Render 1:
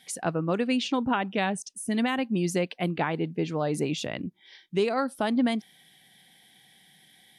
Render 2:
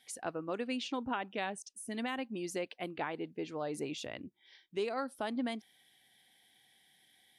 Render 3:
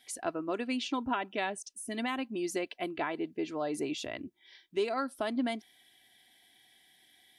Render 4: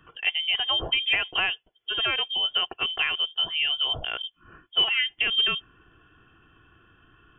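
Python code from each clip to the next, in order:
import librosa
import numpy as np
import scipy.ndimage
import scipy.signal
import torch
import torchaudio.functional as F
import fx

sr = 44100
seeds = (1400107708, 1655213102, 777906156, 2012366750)

y1 = fx.peak_eq(x, sr, hz=170.0, db=-11.5, octaves=0.58)
y1 = y1 * 10.0 ** (-9.0 / 20.0)
y2 = y1 + 0.43 * np.pad(y1, (int(3.0 * sr / 1000.0), 0))[:len(y1)]
y2 = y2 * 10.0 ** (3.0 / 20.0)
y3 = fx.freq_invert(y2, sr, carrier_hz=3400)
y3 = y3 * 10.0 ** (8.0 / 20.0)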